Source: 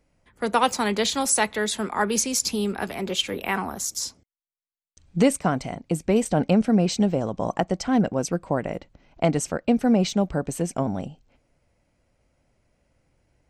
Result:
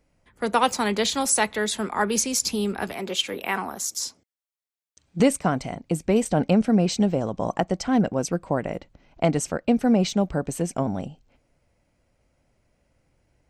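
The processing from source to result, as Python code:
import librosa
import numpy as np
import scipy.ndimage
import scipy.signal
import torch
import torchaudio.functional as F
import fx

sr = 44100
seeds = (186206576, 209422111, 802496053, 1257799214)

y = fx.highpass(x, sr, hz=260.0, slope=6, at=(2.93, 5.2))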